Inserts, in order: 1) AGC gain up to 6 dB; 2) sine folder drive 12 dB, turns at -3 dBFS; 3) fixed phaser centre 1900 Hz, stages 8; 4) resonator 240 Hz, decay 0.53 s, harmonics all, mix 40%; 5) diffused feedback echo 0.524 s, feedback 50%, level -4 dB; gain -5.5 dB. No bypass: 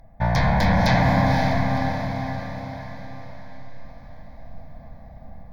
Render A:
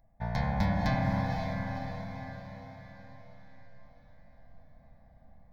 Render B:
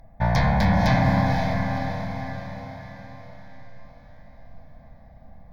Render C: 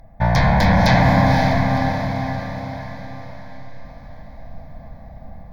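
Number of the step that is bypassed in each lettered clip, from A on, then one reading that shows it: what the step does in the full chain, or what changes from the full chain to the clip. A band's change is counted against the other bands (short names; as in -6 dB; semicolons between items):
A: 2, 250 Hz band +2.0 dB; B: 1, 125 Hz band +1.5 dB; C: 4, loudness change +4.0 LU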